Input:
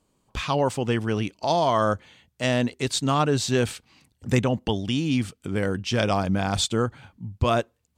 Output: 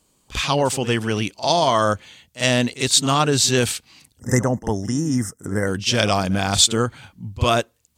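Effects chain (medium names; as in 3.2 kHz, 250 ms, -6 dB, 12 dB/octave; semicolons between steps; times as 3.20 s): treble shelf 2.8 kHz +11 dB; reverse echo 49 ms -15 dB; time-frequency box 4.20–5.67 s, 2.1–5 kHz -26 dB; trim +2.5 dB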